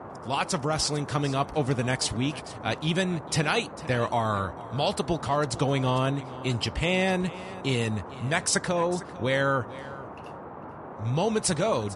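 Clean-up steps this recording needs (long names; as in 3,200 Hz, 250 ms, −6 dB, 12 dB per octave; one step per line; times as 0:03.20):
noise reduction from a noise print 30 dB
echo removal 450 ms −17.5 dB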